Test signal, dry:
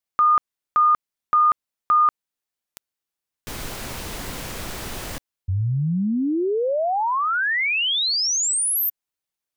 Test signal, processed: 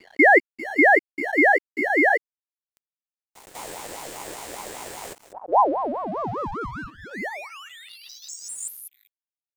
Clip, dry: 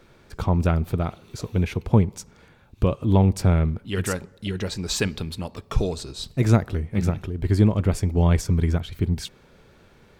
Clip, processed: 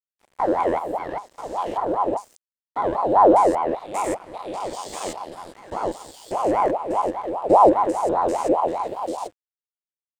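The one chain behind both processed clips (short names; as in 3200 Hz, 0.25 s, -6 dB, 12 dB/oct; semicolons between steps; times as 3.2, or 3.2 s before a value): stepped spectrum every 0.2 s; thirty-one-band EQ 100 Hz +12 dB, 200 Hz -3 dB, 800 Hz -11 dB, 1250 Hz +8 dB, 8000 Hz +10 dB; crossover distortion -41.5 dBFS; ring modulator with a swept carrier 670 Hz, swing 40%, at 5 Hz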